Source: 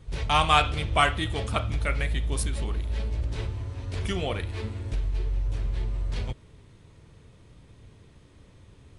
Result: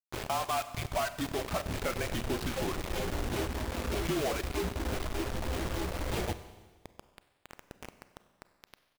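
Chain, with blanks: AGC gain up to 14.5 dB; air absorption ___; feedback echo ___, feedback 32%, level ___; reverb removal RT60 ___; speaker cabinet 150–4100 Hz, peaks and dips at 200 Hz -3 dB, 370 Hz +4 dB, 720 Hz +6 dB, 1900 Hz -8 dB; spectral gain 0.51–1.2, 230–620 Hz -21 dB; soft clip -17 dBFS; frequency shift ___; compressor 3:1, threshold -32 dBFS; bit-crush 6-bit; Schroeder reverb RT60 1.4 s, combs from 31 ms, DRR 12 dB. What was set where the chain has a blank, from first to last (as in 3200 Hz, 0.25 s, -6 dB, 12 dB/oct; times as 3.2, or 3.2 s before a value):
400 m, 0.178 s, -23.5 dB, 1 s, -36 Hz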